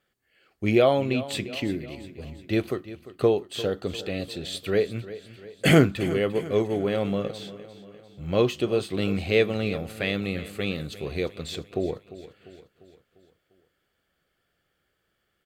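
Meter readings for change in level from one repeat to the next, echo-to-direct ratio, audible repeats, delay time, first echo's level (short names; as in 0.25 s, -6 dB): -5.5 dB, -14.0 dB, 4, 0.348 s, -15.5 dB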